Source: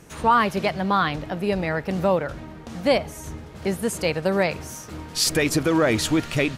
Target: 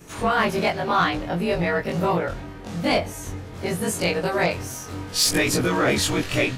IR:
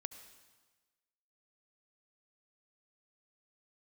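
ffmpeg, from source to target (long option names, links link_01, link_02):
-af "afftfilt=real='re':imag='-im':win_size=2048:overlap=0.75,afftfilt=real='re*lt(hypot(re,im),0.501)':imag='im*lt(hypot(re,im),0.501)':win_size=1024:overlap=0.75,asoftclip=type=tanh:threshold=-17.5dB,volume=7.5dB"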